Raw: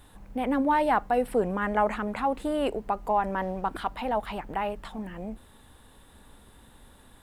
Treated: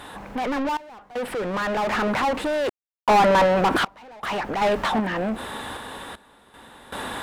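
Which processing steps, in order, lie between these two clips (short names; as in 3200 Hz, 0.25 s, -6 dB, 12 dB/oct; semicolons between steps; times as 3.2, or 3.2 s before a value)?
overdrive pedal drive 36 dB, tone 2100 Hz, clips at -12 dBFS; random-step tremolo 2.6 Hz, depth 100%; gain +3 dB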